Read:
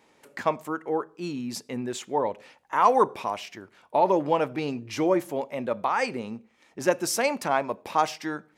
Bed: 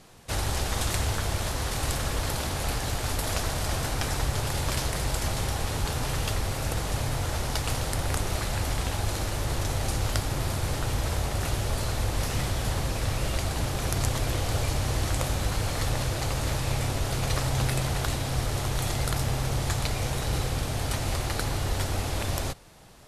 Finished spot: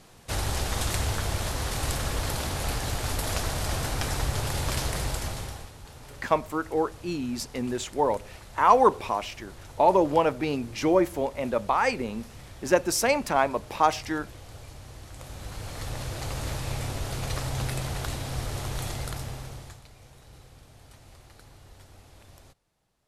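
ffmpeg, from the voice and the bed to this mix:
ffmpeg -i stem1.wav -i stem2.wav -filter_complex "[0:a]adelay=5850,volume=1.5dB[link_01];[1:a]volume=13dB,afade=type=out:start_time=4.98:duration=0.74:silence=0.141254,afade=type=in:start_time=15.11:duration=1.27:silence=0.211349,afade=type=out:start_time=18.81:duration=1.01:silence=0.112202[link_02];[link_01][link_02]amix=inputs=2:normalize=0" out.wav

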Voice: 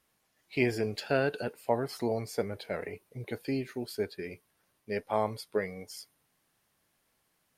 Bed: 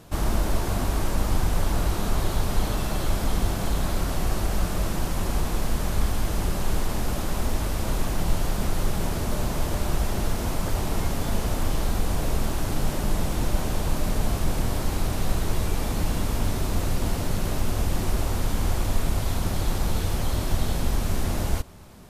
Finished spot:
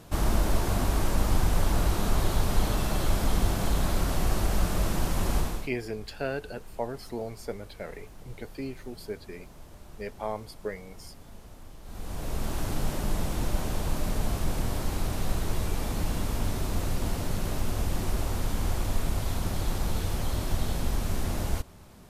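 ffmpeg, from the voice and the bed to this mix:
ffmpeg -i stem1.wav -i stem2.wav -filter_complex "[0:a]adelay=5100,volume=-4dB[link_01];[1:a]volume=17.5dB,afade=type=out:start_time=5.37:duration=0.33:silence=0.0841395,afade=type=in:start_time=11.83:duration=0.76:silence=0.11885[link_02];[link_01][link_02]amix=inputs=2:normalize=0" out.wav

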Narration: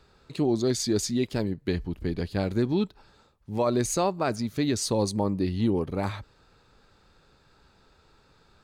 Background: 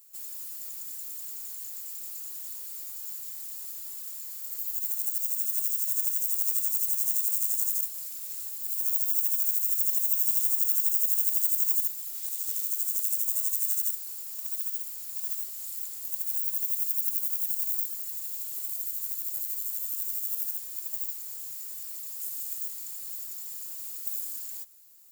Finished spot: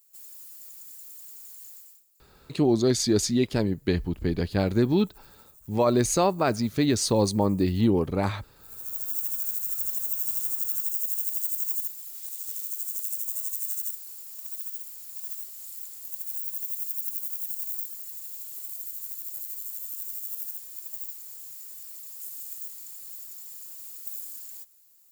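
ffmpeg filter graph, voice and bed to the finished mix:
ffmpeg -i stem1.wav -i stem2.wav -filter_complex "[0:a]adelay=2200,volume=3dB[link_01];[1:a]volume=17dB,afade=type=out:start_time=1.71:duration=0.33:silence=0.0944061,afade=type=in:start_time=8.55:duration=0.6:silence=0.0707946[link_02];[link_01][link_02]amix=inputs=2:normalize=0" out.wav

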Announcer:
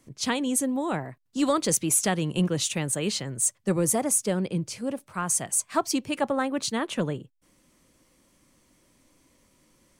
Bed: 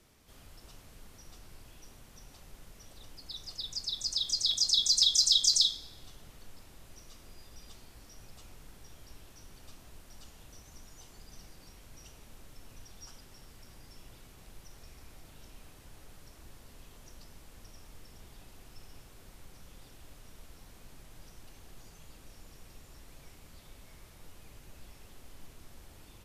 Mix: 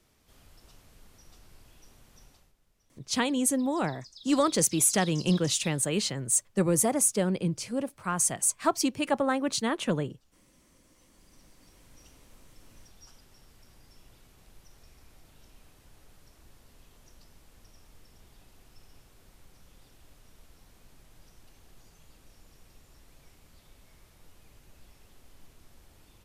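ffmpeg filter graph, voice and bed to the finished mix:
ffmpeg -i stem1.wav -i stem2.wav -filter_complex "[0:a]adelay=2900,volume=-0.5dB[link_01];[1:a]volume=11.5dB,afade=type=out:start_time=2.24:duration=0.3:silence=0.16788,afade=type=in:start_time=10.84:duration=1.1:silence=0.188365[link_02];[link_01][link_02]amix=inputs=2:normalize=0" out.wav

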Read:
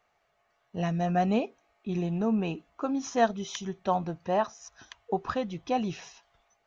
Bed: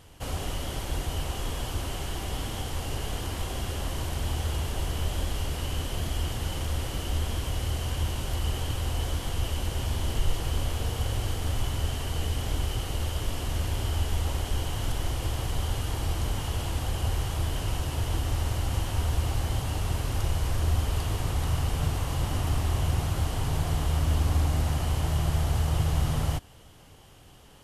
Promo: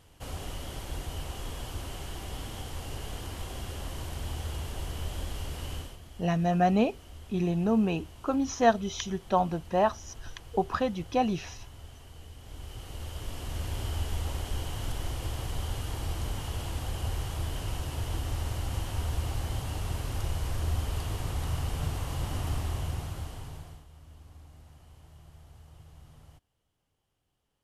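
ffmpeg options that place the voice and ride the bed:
ffmpeg -i stem1.wav -i stem2.wav -filter_complex "[0:a]adelay=5450,volume=2dB[link_01];[1:a]volume=8dB,afade=type=out:start_time=5.74:duration=0.24:silence=0.237137,afade=type=in:start_time=12.4:duration=1.4:silence=0.199526,afade=type=out:start_time=22.52:duration=1.33:silence=0.0749894[link_02];[link_01][link_02]amix=inputs=2:normalize=0" out.wav

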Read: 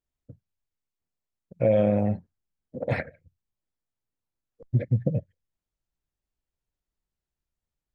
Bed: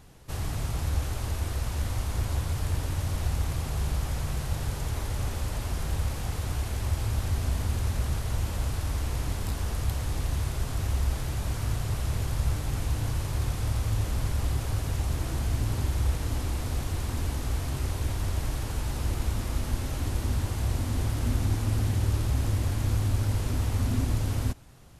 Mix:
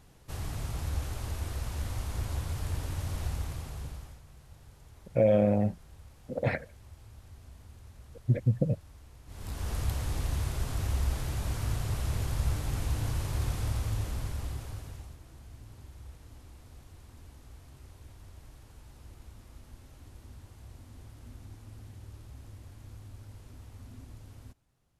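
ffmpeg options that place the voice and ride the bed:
ffmpeg -i stem1.wav -i stem2.wav -filter_complex "[0:a]adelay=3550,volume=-2dB[link_01];[1:a]volume=15.5dB,afade=type=out:start_time=3.24:duration=0.97:silence=0.125893,afade=type=in:start_time=9.26:duration=0.49:silence=0.0944061,afade=type=out:start_time=13.55:duration=1.63:silence=0.112202[link_02];[link_01][link_02]amix=inputs=2:normalize=0" out.wav

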